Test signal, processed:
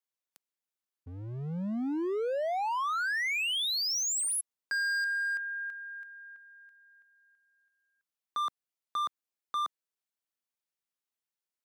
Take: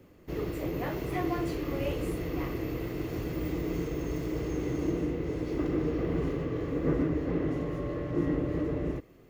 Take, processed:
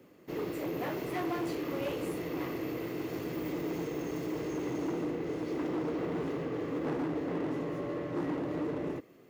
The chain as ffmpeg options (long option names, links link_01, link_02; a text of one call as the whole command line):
ffmpeg -i in.wav -af "asoftclip=type=hard:threshold=-29dB,highpass=180" out.wav